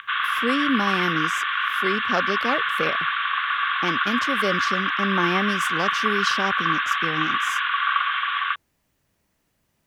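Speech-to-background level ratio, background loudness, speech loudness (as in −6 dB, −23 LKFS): −5.0 dB, −22.5 LKFS, −27.5 LKFS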